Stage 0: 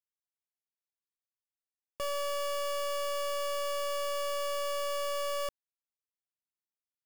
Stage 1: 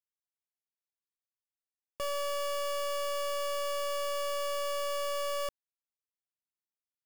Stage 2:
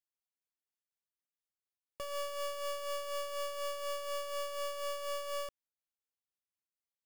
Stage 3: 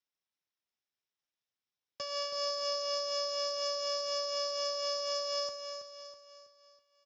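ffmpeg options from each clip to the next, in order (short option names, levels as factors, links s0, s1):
-af anull
-af "tremolo=f=4.1:d=0.5,volume=0.708"
-filter_complex "[0:a]lowpass=f=5400:t=q:w=9.3,asplit=2[s0][s1];[s1]aecho=0:1:325|650|975|1300|1625:0.422|0.194|0.0892|0.041|0.0189[s2];[s0][s2]amix=inputs=2:normalize=0" -ar 16000 -c:a libspeex -b:a 34k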